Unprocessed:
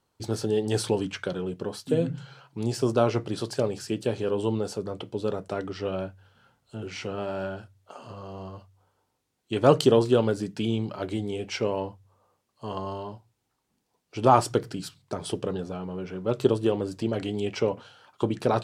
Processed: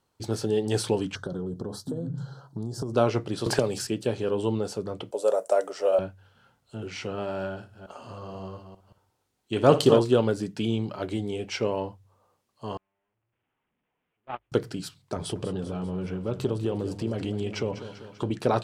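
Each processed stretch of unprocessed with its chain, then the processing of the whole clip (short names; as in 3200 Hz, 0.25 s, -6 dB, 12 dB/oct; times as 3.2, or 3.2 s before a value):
1.15–2.94 low shelf 400 Hz +10 dB + compressor 10:1, threshold -28 dBFS + Butterworth band-stop 2400 Hz, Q 1
3.46–3.87 high shelf 4600 Hz +7.5 dB + three-band squash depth 100%
5.11–5.99 resonant high-pass 580 Hz, resonance Q 4.7 + resonant high shelf 5500 Hz +13.5 dB, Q 1.5 + mismatched tape noise reduction decoder only
7.51–10 reverse delay 0.177 s, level -8 dB + flutter echo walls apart 9.9 m, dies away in 0.27 s
12.77–14.52 delta modulation 16 kbps, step -16.5 dBFS + gate -13 dBFS, range -58 dB + notches 50/100 Hz
15.16–18.31 low shelf 190 Hz +8.5 dB + compressor 2:1, threshold -28 dBFS + warbling echo 0.196 s, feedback 59%, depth 51 cents, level -12.5 dB
whole clip: dry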